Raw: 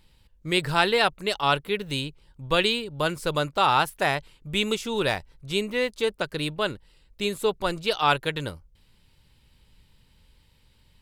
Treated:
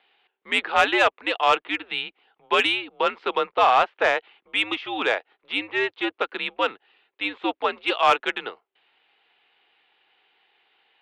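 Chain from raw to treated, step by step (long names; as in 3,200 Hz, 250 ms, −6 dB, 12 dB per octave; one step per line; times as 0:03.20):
single-sideband voice off tune −110 Hz 570–3,400 Hz
0:03.38–0:04.04: high-shelf EQ 2,500 Hz −3.5 dB
harmonic generator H 5 −21 dB, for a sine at −7.5 dBFS
level +2.5 dB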